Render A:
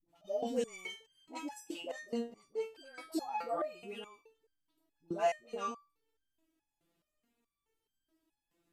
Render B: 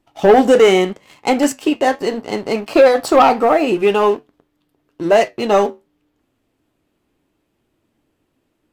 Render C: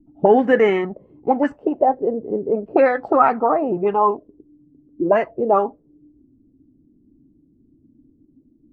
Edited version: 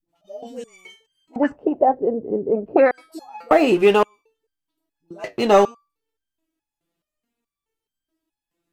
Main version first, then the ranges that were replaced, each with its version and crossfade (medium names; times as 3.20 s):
A
1.36–2.91 s: from C
3.51–4.03 s: from B
5.24–5.65 s: from B